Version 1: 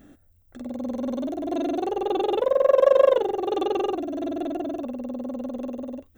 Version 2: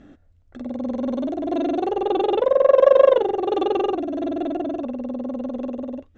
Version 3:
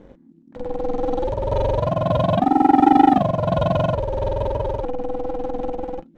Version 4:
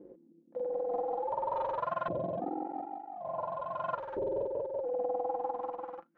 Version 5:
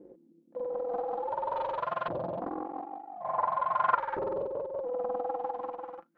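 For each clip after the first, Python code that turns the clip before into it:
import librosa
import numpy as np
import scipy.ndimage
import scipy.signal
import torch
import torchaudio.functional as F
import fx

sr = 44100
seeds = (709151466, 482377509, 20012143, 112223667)

y1 = scipy.signal.sosfilt(scipy.signal.bessel(8, 4200.0, 'lowpass', norm='mag', fs=sr, output='sos'), x)
y1 = y1 * librosa.db_to_amplitude(3.5)
y2 = fx.low_shelf(y1, sr, hz=160.0, db=11.0)
y2 = fx.leveller(y2, sr, passes=1)
y2 = y2 * np.sin(2.0 * np.pi * 250.0 * np.arange(len(y2)) / sr)
y3 = fx.filter_lfo_bandpass(y2, sr, shape='saw_up', hz=0.48, low_hz=360.0, high_hz=1500.0, q=3.6)
y3 = y3 + 0.39 * np.pad(y3, (int(5.8 * sr / 1000.0), 0))[:len(y3)]
y3 = fx.over_compress(y3, sr, threshold_db=-32.0, ratio=-1.0)
y3 = y3 * librosa.db_to_amplitude(-3.0)
y4 = fx.spec_box(y3, sr, start_s=3.21, length_s=1.13, low_hz=720.0, high_hz=2400.0, gain_db=9)
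y4 = fx.dynamic_eq(y4, sr, hz=3300.0, q=0.77, threshold_db=-50.0, ratio=4.0, max_db=7)
y4 = fx.doppler_dist(y4, sr, depth_ms=0.43)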